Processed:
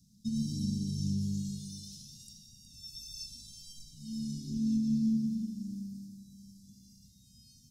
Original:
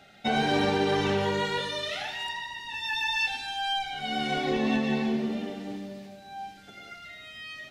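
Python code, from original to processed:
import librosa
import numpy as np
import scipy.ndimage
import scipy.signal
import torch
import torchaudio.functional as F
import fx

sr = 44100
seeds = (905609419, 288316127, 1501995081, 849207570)

y = scipy.signal.sosfilt(scipy.signal.cheby1(4, 1.0, [220.0, 5300.0], 'bandstop', fs=sr, output='sos'), x)
y = y + 10.0 ** (-12.0 / 20.0) * np.pad(y, (int(366 * sr / 1000.0), 0))[:len(y)]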